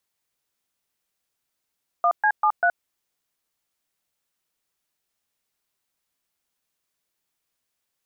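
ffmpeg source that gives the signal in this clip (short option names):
-f lavfi -i "aevalsrc='0.119*clip(min(mod(t,0.196),0.072-mod(t,0.196))/0.002,0,1)*(eq(floor(t/0.196),0)*(sin(2*PI*697*mod(t,0.196))+sin(2*PI*1209*mod(t,0.196)))+eq(floor(t/0.196),1)*(sin(2*PI*852*mod(t,0.196))+sin(2*PI*1633*mod(t,0.196)))+eq(floor(t/0.196),2)*(sin(2*PI*852*mod(t,0.196))+sin(2*PI*1209*mod(t,0.196)))+eq(floor(t/0.196),3)*(sin(2*PI*697*mod(t,0.196))+sin(2*PI*1477*mod(t,0.196))))':d=0.784:s=44100"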